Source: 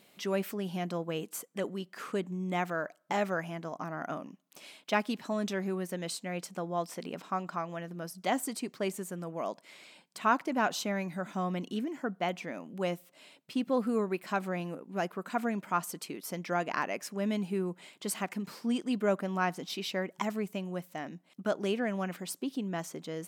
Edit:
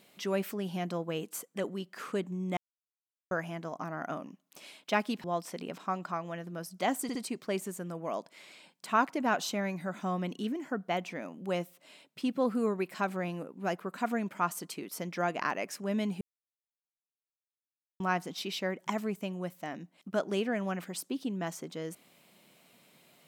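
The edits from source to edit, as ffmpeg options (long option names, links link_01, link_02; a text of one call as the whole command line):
ffmpeg -i in.wav -filter_complex "[0:a]asplit=8[link_01][link_02][link_03][link_04][link_05][link_06][link_07][link_08];[link_01]atrim=end=2.57,asetpts=PTS-STARTPTS,afade=type=out:start_time=2.566:duration=0.004:curve=hsin[link_09];[link_02]atrim=start=2.57:end=3.31,asetpts=PTS-STARTPTS,volume=0[link_10];[link_03]atrim=start=3.31:end=5.242,asetpts=PTS-STARTPTS,afade=type=in:duration=0.004:curve=hsin[link_11];[link_04]atrim=start=6.678:end=8.532[link_12];[link_05]atrim=start=8.468:end=8.532[link_13];[link_06]atrim=start=8.468:end=17.53,asetpts=PTS-STARTPTS,afade=type=out:start_time=9.058:duration=0.004:curve=hsin[link_14];[link_07]atrim=start=17.53:end=19.32,asetpts=PTS-STARTPTS,volume=0[link_15];[link_08]atrim=start=19.32,asetpts=PTS-STARTPTS,afade=type=in:duration=0.004:curve=hsin[link_16];[link_09][link_10][link_11]concat=n=3:v=0:a=1[link_17];[link_17][link_12]acrossfade=duration=0.004:curve1=hsin:curve2=hsin[link_18];[link_18][link_13]acrossfade=duration=0.004:curve1=hsin:curve2=hsin[link_19];[link_14][link_15][link_16]concat=n=3:v=0:a=1[link_20];[link_19][link_20]acrossfade=duration=0.004:curve1=hsin:curve2=hsin" out.wav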